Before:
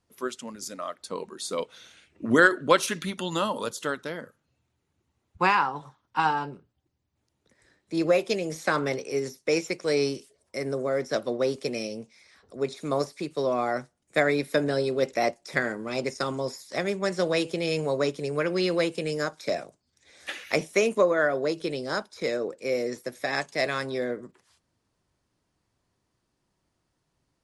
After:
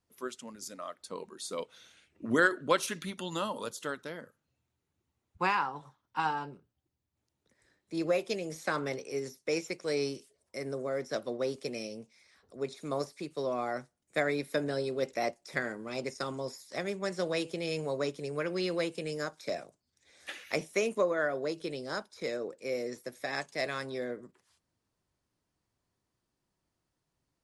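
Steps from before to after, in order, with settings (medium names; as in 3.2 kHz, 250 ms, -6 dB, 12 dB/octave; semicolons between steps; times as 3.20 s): treble shelf 9.4 kHz +3.5 dB; trim -7 dB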